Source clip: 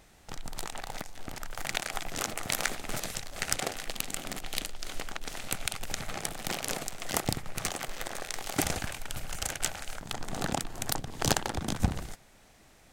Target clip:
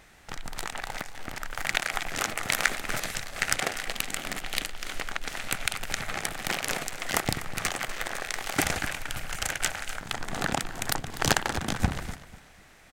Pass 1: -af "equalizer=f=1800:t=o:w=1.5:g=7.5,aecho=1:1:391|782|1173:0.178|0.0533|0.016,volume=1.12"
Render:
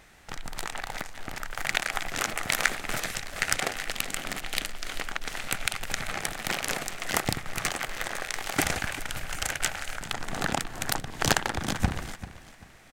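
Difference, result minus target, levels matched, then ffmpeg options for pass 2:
echo 144 ms late
-af "equalizer=f=1800:t=o:w=1.5:g=7.5,aecho=1:1:247|494|741:0.178|0.0533|0.016,volume=1.12"

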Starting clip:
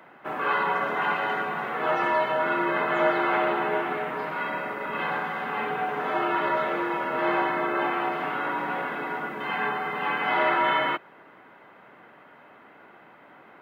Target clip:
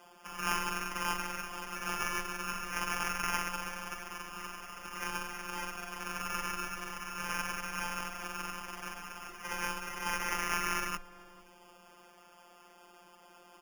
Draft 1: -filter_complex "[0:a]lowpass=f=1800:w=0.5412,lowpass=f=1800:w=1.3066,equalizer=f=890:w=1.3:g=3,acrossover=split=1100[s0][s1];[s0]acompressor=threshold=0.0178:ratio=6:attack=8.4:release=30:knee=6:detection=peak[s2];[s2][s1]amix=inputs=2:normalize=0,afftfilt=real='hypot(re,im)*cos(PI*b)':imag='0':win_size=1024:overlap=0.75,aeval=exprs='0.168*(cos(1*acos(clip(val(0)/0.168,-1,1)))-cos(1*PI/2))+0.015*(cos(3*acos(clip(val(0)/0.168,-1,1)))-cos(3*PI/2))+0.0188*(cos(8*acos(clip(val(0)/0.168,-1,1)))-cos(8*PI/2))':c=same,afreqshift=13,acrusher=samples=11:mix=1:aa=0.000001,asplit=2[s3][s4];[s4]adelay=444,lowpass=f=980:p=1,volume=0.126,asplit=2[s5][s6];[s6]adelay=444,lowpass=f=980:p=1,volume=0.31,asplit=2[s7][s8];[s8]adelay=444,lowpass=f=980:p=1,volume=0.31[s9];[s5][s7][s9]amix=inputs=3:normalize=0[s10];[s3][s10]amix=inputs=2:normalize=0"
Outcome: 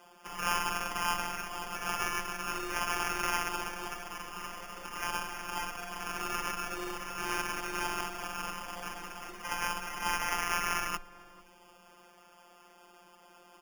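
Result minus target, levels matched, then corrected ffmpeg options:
compression: peak gain reduction -8 dB
-filter_complex "[0:a]lowpass=f=1800:w=0.5412,lowpass=f=1800:w=1.3066,equalizer=f=890:w=1.3:g=3,acrossover=split=1100[s0][s1];[s0]acompressor=threshold=0.00596:ratio=6:attack=8.4:release=30:knee=6:detection=peak[s2];[s2][s1]amix=inputs=2:normalize=0,afftfilt=real='hypot(re,im)*cos(PI*b)':imag='0':win_size=1024:overlap=0.75,aeval=exprs='0.168*(cos(1*acos(clip(val(0)/0.168,-1,1)))-cos(1*PI/2))+0.015*(cos(3*acos(clip(val(0)/0.168,-1,1)))-cos(3*PI/2))+0.0188*(cos(8*acos(clip(val(0)/0.168,-1,1)))-cos(8*PI/2))':c=same,afreqshift=13,acrusher=samples=11:mix=1:aa=0.000001,asplit=2[s3][s4];[s4]adelay=444,lowpass=f=980:p=1,volume=0.126,asplit=2[s5][s6];[s6]adelay=444,lowpass=f=980:p=1,volume=0.31,asplit=2[s7][s8];[s8]adelay=444,lowpass=f=980:p=1,volume=0.31[s9];[s5][s7][s9]amix=inputs=3:normalize=0[s10];[s3][s10]amix=inputs=2:normalize=0"

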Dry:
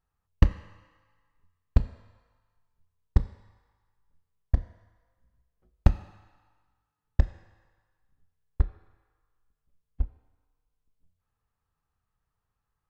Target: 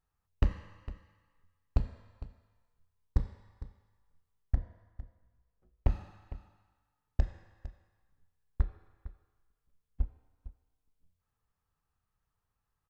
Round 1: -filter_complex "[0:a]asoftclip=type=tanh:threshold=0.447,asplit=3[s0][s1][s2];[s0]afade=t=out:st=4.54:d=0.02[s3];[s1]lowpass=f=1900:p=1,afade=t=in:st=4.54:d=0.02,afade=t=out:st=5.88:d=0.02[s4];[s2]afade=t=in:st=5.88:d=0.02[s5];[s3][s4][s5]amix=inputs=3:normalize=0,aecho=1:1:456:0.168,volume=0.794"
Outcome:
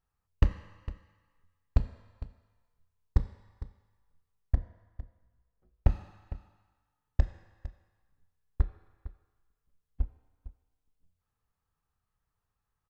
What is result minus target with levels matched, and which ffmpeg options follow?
saturation: distortion -8 dB
-filter_complex "[0:a]asoftclip=type=tanh:threshold=0.2,asplit=3[s0][s1][s2];[s0]afade=t=out:st=4.54:d=0.02[s3];[s1]lowpass=f=1900:p=1,afade=t=in:st=4.54:d=0.02,afade=t=out:st=5.88:d=0.02[s4];[s2]afade=t=in:st=5.88:d=0.02[s5];[s3][s4][s5]amix=inputs=3:normalize=0,aecho=1:1:456:0.168,volume=0.794"

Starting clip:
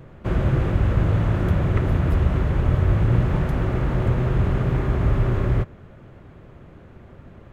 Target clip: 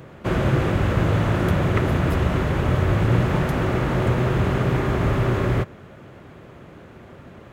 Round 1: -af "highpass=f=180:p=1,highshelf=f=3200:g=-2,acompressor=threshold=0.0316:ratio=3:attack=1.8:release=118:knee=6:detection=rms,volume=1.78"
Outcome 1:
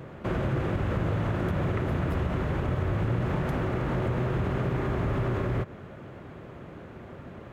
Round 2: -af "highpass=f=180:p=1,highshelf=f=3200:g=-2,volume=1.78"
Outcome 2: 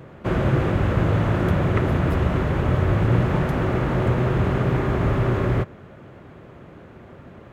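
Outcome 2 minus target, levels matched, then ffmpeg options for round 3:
8 kHz band -6.0 dB
-af "highpass=f=180:p=1,highshelf=f=3200:g=5.5,volume=1.78"

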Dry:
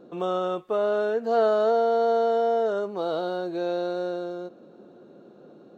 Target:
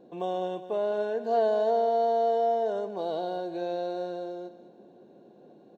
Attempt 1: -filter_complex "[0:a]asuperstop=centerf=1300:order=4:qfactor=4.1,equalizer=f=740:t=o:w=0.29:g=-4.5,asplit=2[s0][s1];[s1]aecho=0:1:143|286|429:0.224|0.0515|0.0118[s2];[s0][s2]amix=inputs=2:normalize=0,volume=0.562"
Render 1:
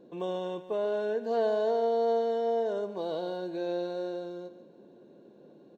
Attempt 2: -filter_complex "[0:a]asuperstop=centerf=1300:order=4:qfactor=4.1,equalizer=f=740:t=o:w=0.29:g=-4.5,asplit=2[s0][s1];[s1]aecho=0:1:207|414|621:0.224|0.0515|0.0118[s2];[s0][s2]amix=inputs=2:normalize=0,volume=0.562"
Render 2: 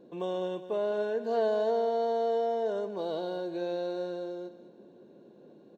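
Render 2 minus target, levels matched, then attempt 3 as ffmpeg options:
1 kHz band -3.5 dB
-filter_complex "[0:a]asuperstop=centerf=1300:order=4:qfactor=4.1,equalizer=f=740:t=o:w=0.29:g=5.5,asplit=2[s0][s1];[s1]aecho=0:1:207|414|621:0.224|0.0515|0.0118[s2];[s0][s2]amix=inputs=2:normalize=0,volume=0.562"

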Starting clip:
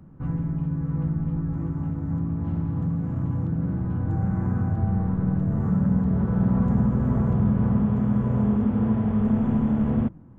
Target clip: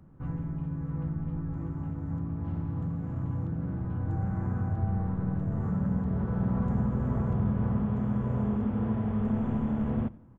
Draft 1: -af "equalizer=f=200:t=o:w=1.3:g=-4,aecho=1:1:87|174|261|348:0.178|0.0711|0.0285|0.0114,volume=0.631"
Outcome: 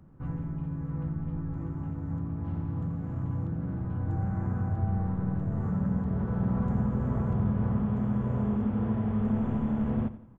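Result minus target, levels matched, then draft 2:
echo-to-direct +7.5 dB
-af "equalizer=f=200:t=o:w=1.3:g=-4,aecho=1:1:87|174|261:0.075|0.03|0.012,volume=0.631"

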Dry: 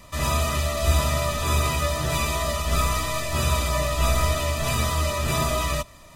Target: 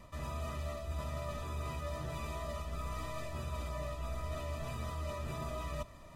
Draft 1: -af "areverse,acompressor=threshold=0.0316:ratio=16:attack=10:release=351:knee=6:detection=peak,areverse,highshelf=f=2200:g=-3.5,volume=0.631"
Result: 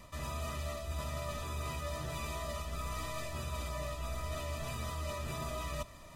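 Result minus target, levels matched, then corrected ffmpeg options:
4 kHz band +4.5 dB
-af "areverse,acompressor=threshold=0.0316:ratio=16:attack=10:release=351:knee=6:detection=peak,areverse,highshelf=f=2200:g=-11,volume=0.631"

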